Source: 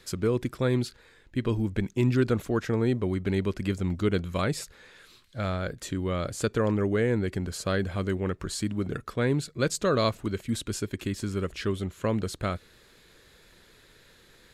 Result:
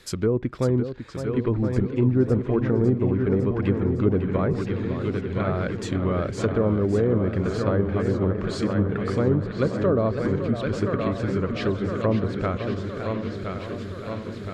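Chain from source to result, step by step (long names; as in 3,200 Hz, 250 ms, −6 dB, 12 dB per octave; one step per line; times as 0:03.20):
delay with a low-pass on its return 1,017 ms, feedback 61%, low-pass 3,300 Hz, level −7 dB
treble cut that deepens with the level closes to 800 Hz, closed at −21 dBFS
feedback echo with a swinging delay time 555 ms, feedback 68%, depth 133 cents, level −9.5 dB
level +3.5 dB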